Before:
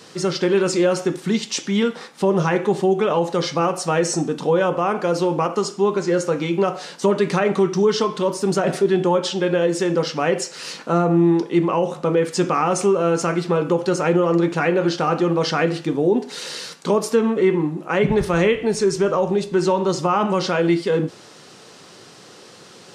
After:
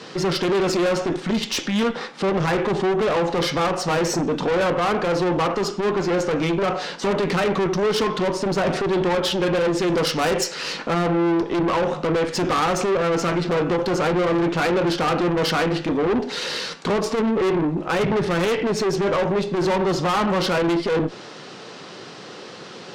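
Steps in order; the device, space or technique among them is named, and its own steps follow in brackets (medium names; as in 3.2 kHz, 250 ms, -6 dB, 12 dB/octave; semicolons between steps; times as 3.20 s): valve radio (band-pass 120–4400 Hz; valve stage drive 25 dB, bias 0.35; transformer saturation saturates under 140 Hz); 9.88–10.54 s: treble shelf 6.6 kHz +10.5 dB; trim +8 dB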